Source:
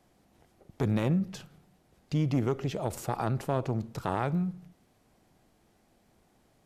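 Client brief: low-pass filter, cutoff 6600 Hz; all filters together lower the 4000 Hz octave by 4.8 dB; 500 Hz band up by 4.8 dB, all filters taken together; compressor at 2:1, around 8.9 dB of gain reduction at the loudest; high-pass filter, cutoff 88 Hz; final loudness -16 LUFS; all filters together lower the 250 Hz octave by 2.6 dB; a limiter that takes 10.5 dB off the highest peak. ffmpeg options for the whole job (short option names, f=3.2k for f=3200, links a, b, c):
-af "highpass=88,lowpass=6.6k,equalizer=f=250:t=o:g=-6,equalizer=f=500:t=o:g=8,equalizer=f=4k:t=o:g=-6,acompressor=threshold=-39dB:ratio=2,volume=25.5dB,alimiter=limit=-4.5dB:level=0:latency=1"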